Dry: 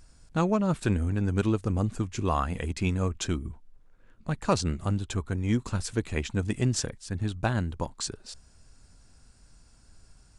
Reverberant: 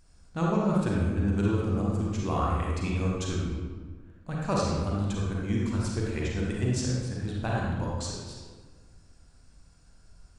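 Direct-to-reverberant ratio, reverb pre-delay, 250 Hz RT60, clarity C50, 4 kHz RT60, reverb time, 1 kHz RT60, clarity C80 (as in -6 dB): -4.5 dB, 34 ms, 1.7 s, -2.5 dB, 0.95 s, 1.5 s, 1.4 s, 1.0 dB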